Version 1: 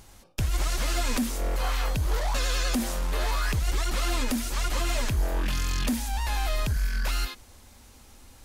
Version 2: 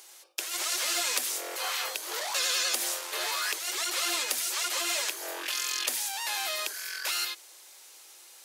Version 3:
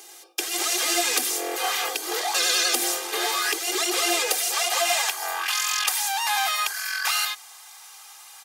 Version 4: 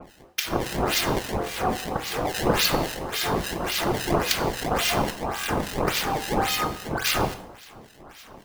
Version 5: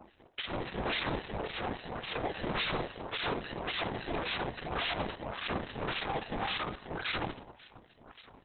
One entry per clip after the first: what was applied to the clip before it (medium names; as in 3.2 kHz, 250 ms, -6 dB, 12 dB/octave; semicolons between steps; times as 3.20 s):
Chebyshev high-pass 340 Hz, order 5; tilt shelf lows -6.5 dB, about 1.4 kHz
comb 2.5 ms, depth 92%; high-pass sweep 240 Hz -> 1 kHz, 3.31–5.34 s; small resonant body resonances 200/660 Hz, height 6 dB, ringing for 20 ms; trim +3 dB
decimation with a swept rate 22×, swing 160% 1.8 Hz; harmonic tremolo 3.6 Hz, depth 100%, crossover 1.6 kHz; gated-style reverb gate 290 ms falling, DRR 10 dB; trim +3 dB
overload inside the chain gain 23.5 dB; trim -6 dB; Opus 6 kbps 48 kHz